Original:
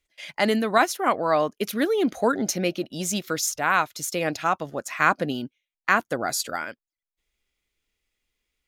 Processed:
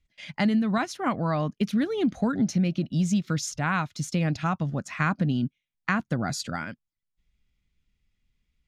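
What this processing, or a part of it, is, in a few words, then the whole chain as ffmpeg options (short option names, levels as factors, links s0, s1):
jukebox: -af "lowpass=6300,lowshelf=f=270:t=q:w=1.5:g=14,acompressor=threshold=0.126:ratio=4,volume=0.708"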